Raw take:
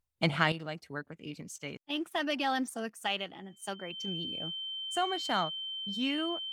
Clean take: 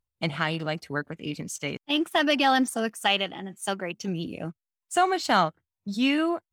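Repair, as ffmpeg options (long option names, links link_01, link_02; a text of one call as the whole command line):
ffmpeg -i in.wav -af "bandreject=frequency=3100:width=30,asetnsamples=nb_out_samples=441:pad=0,asendcmd='0.52 volume volume 9.5dB',volume=0dB" out.wav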